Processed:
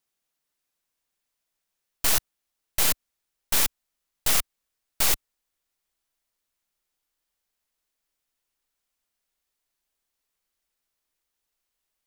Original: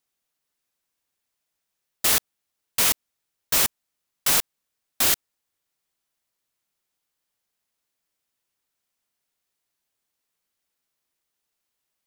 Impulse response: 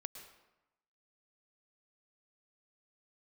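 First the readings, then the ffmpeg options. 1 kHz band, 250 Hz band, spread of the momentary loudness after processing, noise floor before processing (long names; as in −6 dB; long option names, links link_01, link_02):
−2.5 dB, −3.5 dB, 7 LU, −81 dBFS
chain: -af "asubboost=boost=4.5:cutoff=51,aeval=exprs='0.473*(cos(1*acos(clip(val(0)/0.473,-1,1)))-cos(1*PI/2))+0.0376*(cos(3*acos(clip(val(0)/0.473,-1,1)))-cos(3*PI/2))+0.075*(cos(6*acos(clip(val(0)/0.473,-1,1)))-cos(6*PI/2))+0.15*(cos(7*acos(clip(val(0)/0.473,-1,1)))-cos(7*PI/2))+0.188*(cos(8*acos(clip(val(0)/0.473,-1,1)))-cos(8*PI/2))':channel_layout=same,volume=-4.5dB"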